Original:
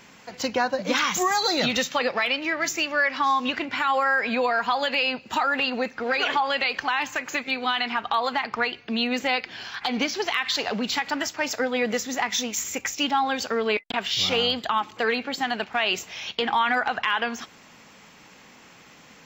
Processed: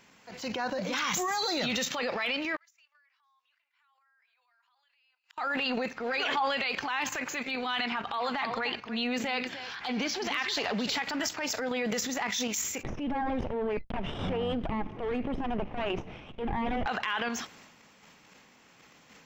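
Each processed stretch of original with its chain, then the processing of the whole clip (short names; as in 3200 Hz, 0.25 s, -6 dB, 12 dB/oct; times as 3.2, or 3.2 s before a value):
2.56–5.38 HPF 1000 Hz 24 dB/oct + flipped gate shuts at -32 dBFS, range -41 dB
7.85–10.98 high shelf 7600 Hz -3.5 dB + echo 0.299 s -13 dB
12.83–16.86 minimum comb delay 0.33 ms + LPF 1400 Hz + low shelf 360 Hz +8.5 dB
whole clip: level quantiser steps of 10 dB; transient shaper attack -6 dB, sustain +7 dB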